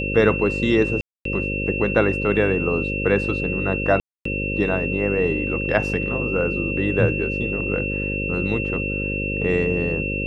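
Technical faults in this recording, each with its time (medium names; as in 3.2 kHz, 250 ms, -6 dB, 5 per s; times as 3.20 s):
buzz 50 Hz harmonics 11 -27 dBFS
whine 2.7 kHz -26 dBFS
1.01–1.25 s: dropout 243 ms
4.00–4.25 s: dropout 254 ms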